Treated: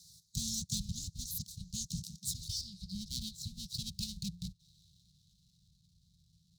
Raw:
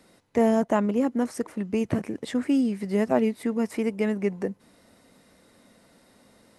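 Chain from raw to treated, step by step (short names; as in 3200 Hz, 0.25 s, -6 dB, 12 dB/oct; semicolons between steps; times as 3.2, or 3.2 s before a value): low-pass sweep 6200 Hz -> 1100 Hz, 2.03–5.85; full-wave rectifier; Chebyshev band-stop 170–3900 Hz, order 5; 2.61–3.06 high shelf 2800 Hz -8.5 dB; spectral gate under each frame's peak -20 dB weak; gain +7 dB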